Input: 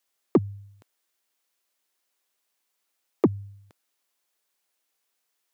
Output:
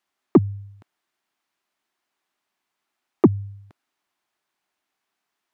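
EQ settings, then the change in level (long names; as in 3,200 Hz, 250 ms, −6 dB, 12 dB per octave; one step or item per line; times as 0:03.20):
low-pass filter 1,400 Hz 6 dB per octave
parametric band 500 Hz −14 dB 0.33 octaves
+7.5 dB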